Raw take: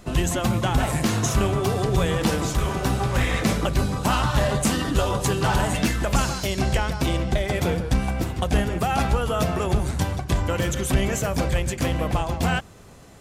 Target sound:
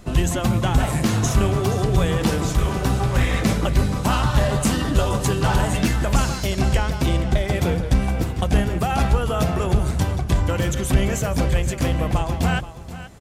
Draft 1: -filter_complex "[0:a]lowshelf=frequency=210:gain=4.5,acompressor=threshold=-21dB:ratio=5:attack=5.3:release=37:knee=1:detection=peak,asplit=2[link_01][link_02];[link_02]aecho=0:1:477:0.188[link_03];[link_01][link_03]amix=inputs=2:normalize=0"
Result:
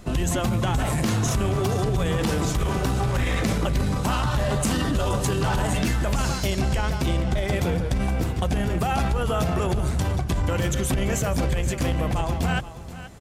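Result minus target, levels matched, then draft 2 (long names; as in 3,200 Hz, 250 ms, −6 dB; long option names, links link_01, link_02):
downward compressor: peak gain reduction +11 dB
-filter_complex "[0:a]lowshelf=frequency=210:gain=4.5,asplit=2[link_01][link_02];[link_02]aecho=0:1:477:0.188[link_03];[link_01][link_03]amix=inputs=2:normalize=0"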